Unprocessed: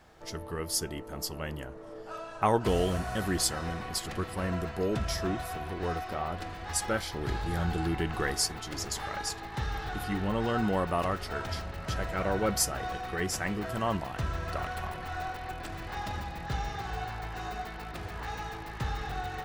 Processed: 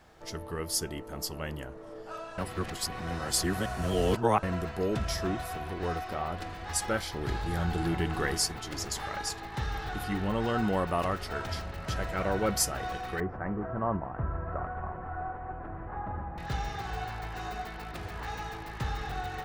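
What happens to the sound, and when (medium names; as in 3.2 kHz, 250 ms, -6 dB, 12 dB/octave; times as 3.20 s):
2.38–4.43 s: reverse
7.41–8.05 s: echo throw 320 ms, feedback 25%, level -9 dB
13.20–16.38 s: low-pass 1.4 kHz 24 dB/octave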